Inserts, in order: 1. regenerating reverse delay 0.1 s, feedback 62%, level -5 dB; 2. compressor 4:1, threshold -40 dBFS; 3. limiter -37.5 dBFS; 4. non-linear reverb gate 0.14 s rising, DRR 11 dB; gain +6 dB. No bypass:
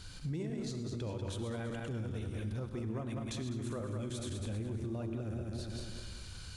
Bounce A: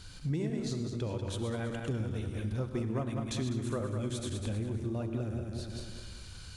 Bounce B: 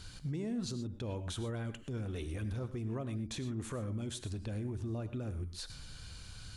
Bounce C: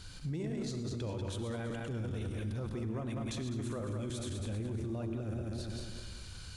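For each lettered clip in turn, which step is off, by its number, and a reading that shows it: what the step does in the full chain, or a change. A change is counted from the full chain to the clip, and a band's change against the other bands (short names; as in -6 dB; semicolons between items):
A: 3, mean gain reduction 3.0 dB; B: 1, 4 kHz band +2.0 dB; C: 2, mean gain reduction 9.5 dB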